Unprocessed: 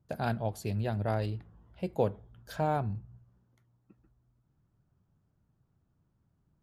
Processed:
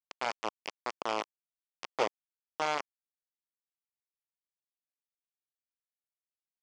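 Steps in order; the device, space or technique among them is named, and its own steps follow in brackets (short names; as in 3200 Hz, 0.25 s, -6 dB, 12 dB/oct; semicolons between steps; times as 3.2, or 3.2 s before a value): hand-held game console (bit-crush 4-bit; speaker cabinet 430–5500 Hz, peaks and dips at 1100 Hz +3 dB, 1600 Hz -7 dB, 3900 Hz -9 dB)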